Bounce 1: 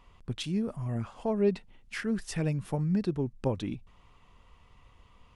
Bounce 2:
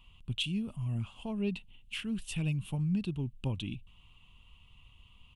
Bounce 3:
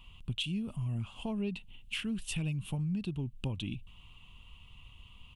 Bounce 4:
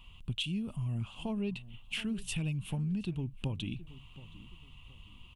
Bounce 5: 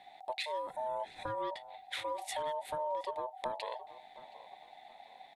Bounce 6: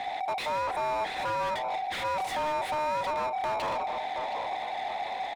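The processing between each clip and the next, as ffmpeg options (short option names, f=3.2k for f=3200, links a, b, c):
-af "firequalizer=gain_entry='entry(120,0);entry(470,-15);entry(1000,-8);entry(1800,-15);entry(2800,10);entry(5000,-10);entry(8500,0)':delay=0.05:min_phase=1"
-af "acompressor=threshold=-38dB:ratio=3,volume=4.5dB"
-filter_complex "[0:a]asplit=2[a][b];[b]adelay=722,lowpass=f=2k:p=1,volume=-17dB,asplit=2[c][d];[d]adelay=722,lowpass=f=2k:p=1,volume=0.36,asplit=2[e][f];[f]adelay=722,lowpass=f=2k:p=1,volume=0.36[g];[a][c][e][g]amix=inputs=4:normalize=0"
-af "aeval=exprs='val(0)*sin(2*PI*760*n/s)':c=same"
-filter_complex "[0:a]asplit=2[a][b];[b]highpass=f=720:p=1,volume=36dB,asoftclip=type=tanh:threshold=-22dB[c];[a][c]amix=inputs=2:normalize=0,lowpass=f=1.5k:p=1,volume=-6dB,aecho=1:1:148:0.0944"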